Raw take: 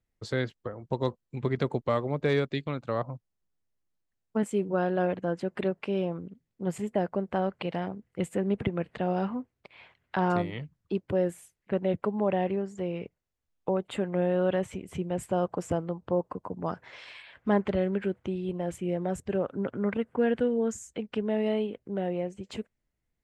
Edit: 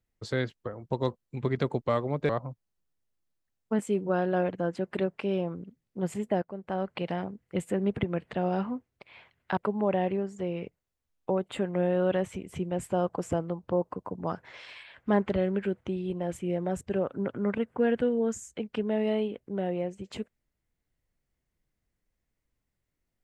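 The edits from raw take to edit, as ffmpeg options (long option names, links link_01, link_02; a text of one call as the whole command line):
ffmpeg -i in.wav -filter_complex "[0:a]asplit=4[link_01][link_02][link_03][link_04];[link_01]atrim=end=2.292[link_05];[link_02]atrim=start=2.928:end=7.06,asetpts=PTS-STARTPTS,afade=type=out:start_time=4.128:duration=0.004:curve=hsin:silence=0.149624[link_06];[link_03]atrim=start=7.06:end=10.212,asetpts=PTS-STARTPTS,afade=type=in:duration=0.54:silence=0.149624[link_07];[link_04]atrim=start=11.958[link_08];[link_06][link_07]concat=n=2:v=0:a=1[link_09];[link_05][link_09]acrossfade=duration=0.004:curve1=hsin:curve2=hsin[link_10];[link_10][link_08]acrossfade=duration=0.004:curve1=hsin:curve2=hsin" out.wav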